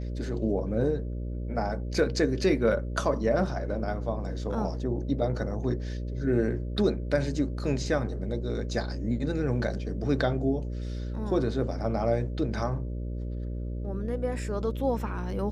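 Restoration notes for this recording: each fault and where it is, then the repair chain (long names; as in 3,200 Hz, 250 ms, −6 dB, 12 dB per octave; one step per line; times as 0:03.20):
mains buzz 60 Hz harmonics 10 −33 dBFS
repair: hum removal 60 Hz, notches 10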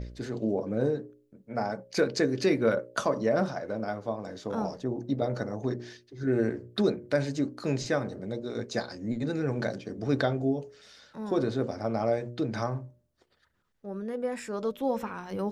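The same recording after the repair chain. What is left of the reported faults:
none of them is left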